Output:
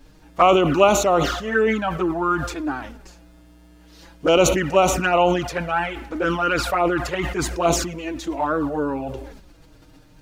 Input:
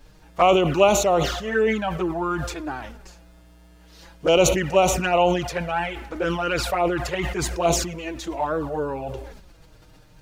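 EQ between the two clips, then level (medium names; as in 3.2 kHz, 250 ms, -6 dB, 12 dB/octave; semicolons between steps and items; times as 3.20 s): peaking EQ 280 Hz +9.5 dB 0.38 oct; dynamic bell 1.3 kHz, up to +7 dB, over -39 dBFS, Q 2.1; 0.0 dB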